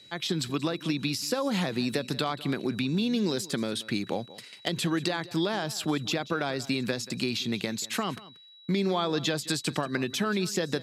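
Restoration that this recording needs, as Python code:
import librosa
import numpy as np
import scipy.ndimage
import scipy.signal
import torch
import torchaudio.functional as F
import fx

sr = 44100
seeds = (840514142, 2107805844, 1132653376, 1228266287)

y = fx.fix_declip(x, sr, threshold_db=-15.0)
y = fx.fix_declick_ar(y, sr, threshold=6.5)
y = fx.notch(y, sr, hz=3900.0, q=30.0)
y = fx.fix_echo_inverse(y, sr, delay_ms=183, level_db=-18.5)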